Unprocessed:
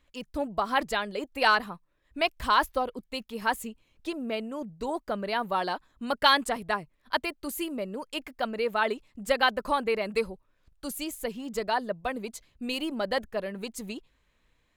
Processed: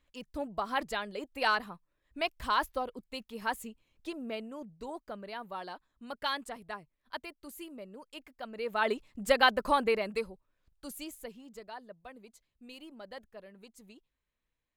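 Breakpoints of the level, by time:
0:04.28 −6 dB
0:05.37 −12.5 dB
0:08.44 −12.5 dB
0:08.94 0 dB
0:09.87 0 dB
0:10.28 −8 dB
0:11.06 −8 dB
0:11.66 −17.5 dB

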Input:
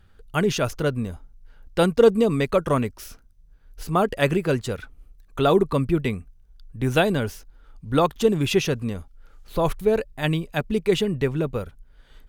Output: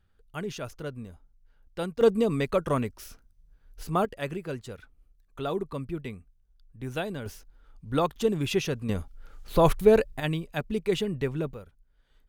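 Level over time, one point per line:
−13 dB
from 0:02.01 −5 dB
from 0:04.05 −12.5 dB
from 0:07.26 −6 dB
from 0:08.89 +2 dB
from 0:10.20 −6 dB
from 0:11.54 −14.5 dB

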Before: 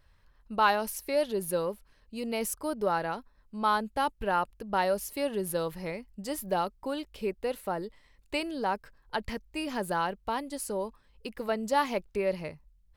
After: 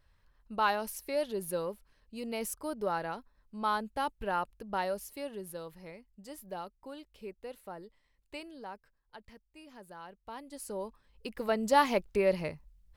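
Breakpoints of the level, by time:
0:04.66 −4.5 dB
0:05.61 −12 dB
0:08.38 −12 dB
0:09.23 −19 dB
0:09.97 −19 dB
0:10.70 −6 dB
0:11.74 +2 dB

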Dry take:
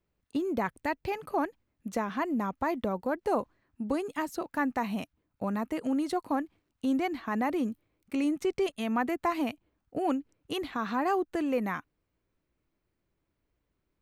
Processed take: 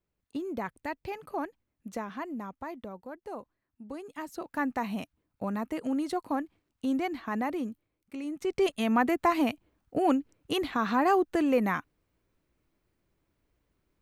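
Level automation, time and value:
0:01.94 −4.5 dB
0:03.07 −12 dB
0:03.82 −12 dB
0:04.60 −1 dB
0:07.35 −1 dB
0:08.23 −9 dB
0:08.66 +4 dB

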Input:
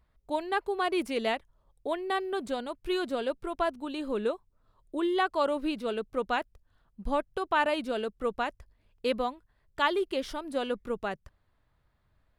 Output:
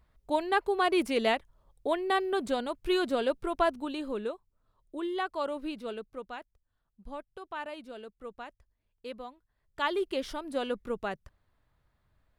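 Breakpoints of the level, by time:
0:03.77 +2.5 dB
0:04.30 −5.5 dB
0:05.91 −5.5 dB
0:06.33 −12.5 dB
0:09.27 −12.5 dB
0:10.02 −1 dB

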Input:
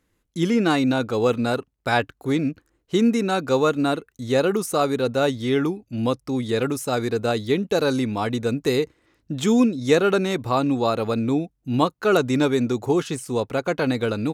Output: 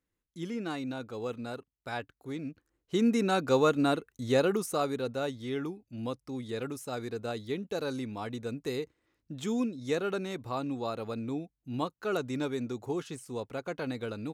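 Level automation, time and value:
0:02.36 −16 dB
0:03.23 −5 dB
0:04.30 −5 dB
0:05.31 −13 dB

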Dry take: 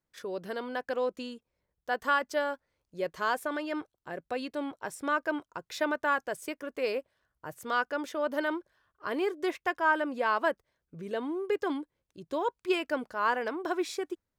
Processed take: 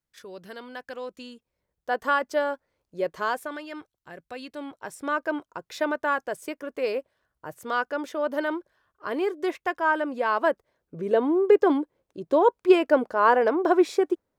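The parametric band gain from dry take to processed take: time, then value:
parametric band 500 Hz 2.9 octaves
0:01.12 −6 dB
0:01.90 +5.5 dB
0:03.20 +5.5 dB
0:03.65 −5.5 dB
0:04.34 −5.5 dB
0:05.22 +4 dB
0:10.24 +4 dB
0:11.06 +13 dB

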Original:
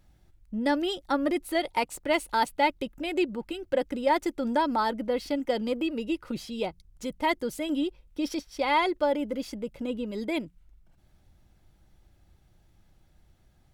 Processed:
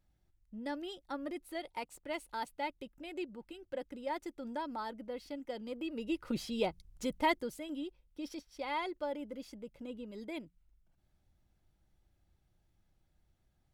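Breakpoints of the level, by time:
0:05.65 −14 dB
0:06.34 −2 dB
0:07.20 −2 dB
0:07.65 −12.5 dB

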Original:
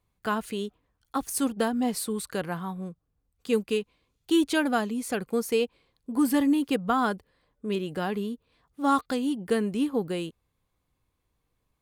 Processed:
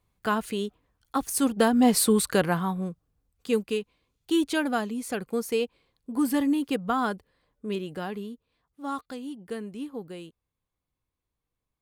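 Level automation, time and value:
0:01.39 +2 dB
0:02.08 +10 dB
0:03.75 −1.5 dB
0:07.69 −1.5 dB
0:08.81 −9.5 dB

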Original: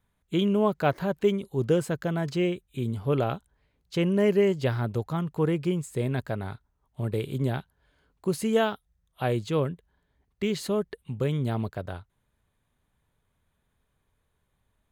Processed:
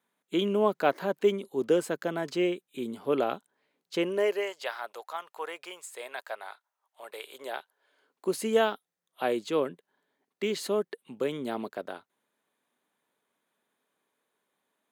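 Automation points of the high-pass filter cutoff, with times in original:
high-pass filter 24 dB per octave
0:03.96 240 Hz
0:04.52 650 Hz
0:07.21 650 Hz
0:08.32 250 Hz

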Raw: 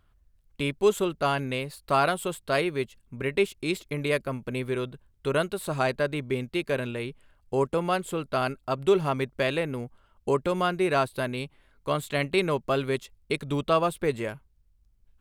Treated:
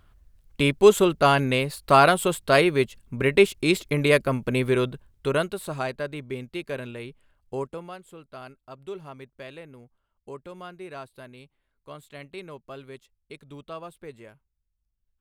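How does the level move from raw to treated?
0:04.86 +7 dB
0:05.92 −4.5 dB
0:07.55 −4.5 dB
0:07.96 −15 dB

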